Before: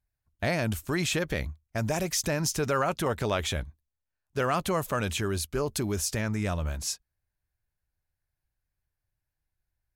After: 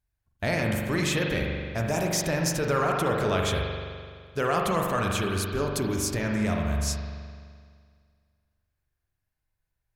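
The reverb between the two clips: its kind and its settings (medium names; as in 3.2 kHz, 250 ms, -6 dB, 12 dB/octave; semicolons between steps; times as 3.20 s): spring tank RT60 2 s, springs 42 ms, chirp 45 ms, DRR 0 dB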